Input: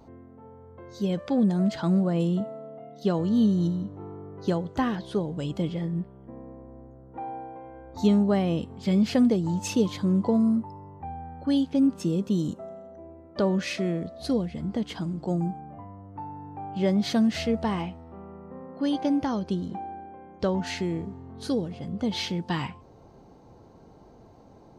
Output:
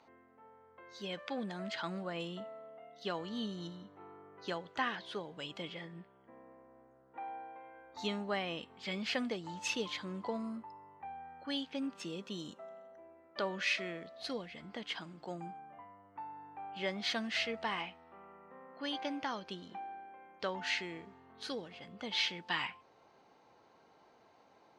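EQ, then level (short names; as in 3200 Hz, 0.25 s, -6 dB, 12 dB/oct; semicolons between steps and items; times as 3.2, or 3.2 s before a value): band-pass 2300 Hz, Q 1.1; +2.0 dB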